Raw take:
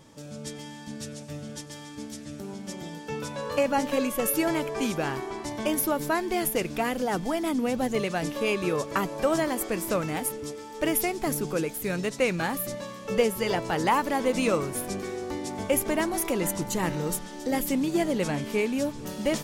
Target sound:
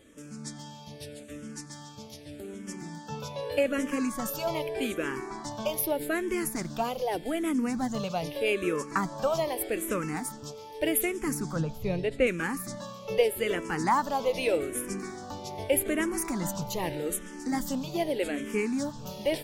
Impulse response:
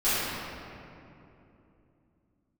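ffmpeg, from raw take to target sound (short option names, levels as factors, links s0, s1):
-filter_complex "[0:a]asettb=1/sr,asplit=3[s0][s1][s2];[s0]atrim=end=11.564[s3];[s1]atrim=start=11.56:end=12.27,asetpts=PTS-STARTPTS,afade=t=in:d=0.004:c=qsin,afade=t=out:st=0.706:d=0.004:c=qsin,aemphasis=mode=reproduction:type=bsi[s4];[s2]atrim=start=12.266[s5];[s3][s4]acrossfade=d=0.004:c1=hsin:c2=qsin[s6];[s6][s5]acrossfade=d=0.004:c1=qsin:c2=hsin,asplit=2[s7][s8];[s8]afreqshift=-0.82[s9];[s7][s9]amix=inputs=2:normalize=1"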